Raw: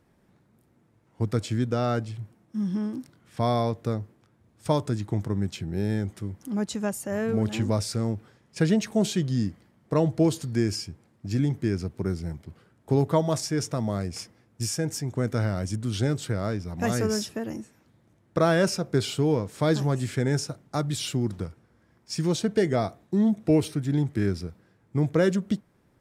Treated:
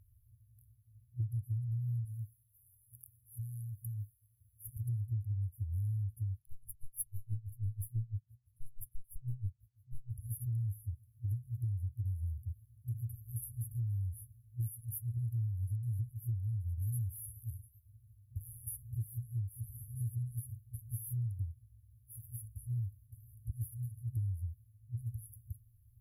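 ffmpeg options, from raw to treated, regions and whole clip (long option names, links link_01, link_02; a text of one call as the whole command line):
ffmpeg -i in.wav -filter_complex "[0:a]asettb=1/sr,asplit=3[link_01][link_02][link_03];[link_01]atrim=end=2.054[link_04];[link_02]atrim=start=2.05:end=4.77,asetpts=PTS-STARTPTS,afade=type=in:duration=0.004:curve=qsin,afade=type=out:start_time=2.716:duration=0.004:curve=qsin,bass=frequency=250:gain=-10,treble=frequency=4000:gain=6,acompressor=threshold=-35dB:ratio=2.5:attack=3.2:release=140:knee=1:detection=peak[link_05];[link_03]atrim=start=4.766[link_06];[link_04][link_05]acrossfade=duration=0.004:curve1=hsin:curve2=qsin[link_07];[link_07][link_06]acrossfade=duration=0.004:curve1=qsin:curve2=hsin,asettb=1/sr,asplit=3[link_08][link_09][link_10];[link_08]atrim=end=6.364[link_11];[link_09]atrim=start=6.36:end=10.14,asetpts=PTS-STARTPTS,afade=type=in:duration=0.004:curve=qsin,afade=type=out:start_time=3.776:duration=0.004:curve=qsin,acontrast=76,aeval=exprs='(tanh(3.98*val(0)+0.7)-tanh(0.7))/3.98':channel_layout=same,aeval=exprs='val(0)*pow(10,-30*(0.5-0.5*cos(2*PI*6.1*n/s))/20)':channel_layout=same[link_12];[link_10]atrim=start=10.136[link_13];[link_11][link_12]acrossfade=duration=0.004:curve1=hsin:curve2=qsin[link_14];[link_14][link_13]acrossfade=duration=0.004:curve1=qsin:curve2=hsin,afftfilt=real='re*(1-between(b*sr/4096,120,10000))':imag='im*(1-between(b*sr/4096,120,10000))':win_size=4096:overlap=0.75,acompressor=threshold=-41dB:ratio=6,volume=7dB" out.wav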